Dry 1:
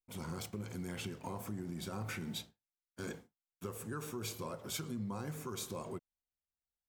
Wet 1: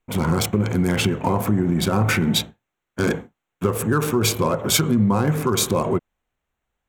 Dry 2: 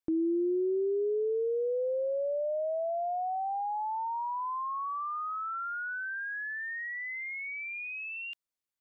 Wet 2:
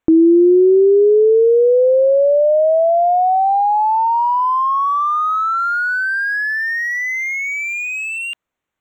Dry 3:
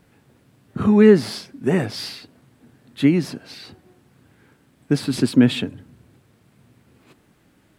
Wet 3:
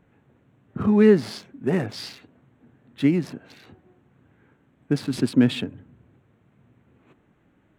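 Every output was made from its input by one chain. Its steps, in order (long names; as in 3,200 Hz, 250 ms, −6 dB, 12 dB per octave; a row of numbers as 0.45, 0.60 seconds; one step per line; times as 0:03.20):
adaptive Wiener filter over 9 samples
normalise the peak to −6 dBFS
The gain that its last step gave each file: +22.5, +19.0, −3.5 decibels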